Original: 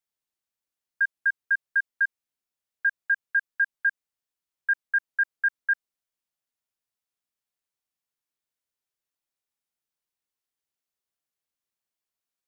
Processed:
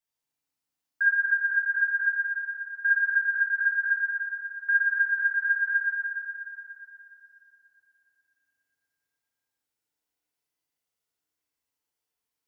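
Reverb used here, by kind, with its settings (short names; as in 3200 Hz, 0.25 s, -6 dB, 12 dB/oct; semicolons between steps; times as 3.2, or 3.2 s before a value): FDN reverb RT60 3.3 s, high-frequency decay 0.65×, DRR -7 dB; gain -4 dB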